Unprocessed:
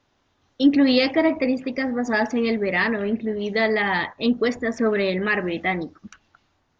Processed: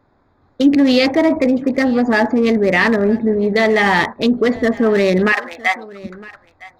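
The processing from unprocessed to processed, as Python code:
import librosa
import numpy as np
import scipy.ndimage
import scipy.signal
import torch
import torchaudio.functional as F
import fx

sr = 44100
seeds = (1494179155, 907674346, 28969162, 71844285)

p1 = fx.wiener(x, sr, points=15)
p2 = fx.highpass(p1, sr, hz=760.0, slope=24, at=(5.32, 5.99))
p3 = fx.over_compress(p2, sr, threshold_db=-24.0, ratio=-1.0)
p4 = p2 + F.gain(torch.from_numpy(p3), 0.0).numpy()
p5 = p4 + 10.0 ** (-21.0 / 20.0) * np.pad(p4, (int(960 * sr / 1000.0), 0))[:len(p4)]
y = F.gain(torch.from_numpy(p5), 3.0).numpy()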